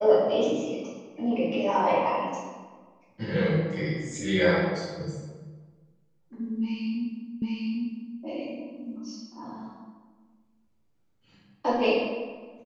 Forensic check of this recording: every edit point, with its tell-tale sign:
7.42 repeat of the last 0.8 s

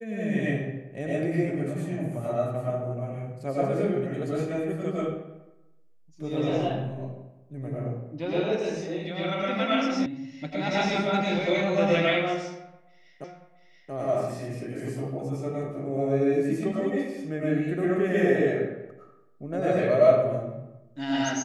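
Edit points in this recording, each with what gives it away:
10.06 sound cut off
13.24 repeat of the last 0.68 s

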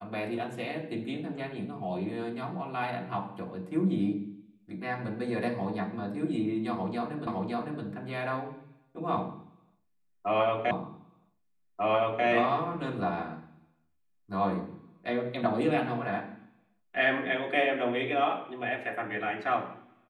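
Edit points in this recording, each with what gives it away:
7.27 repeat of the last 0.56 s
10.71 repeat of the last 1.54 s

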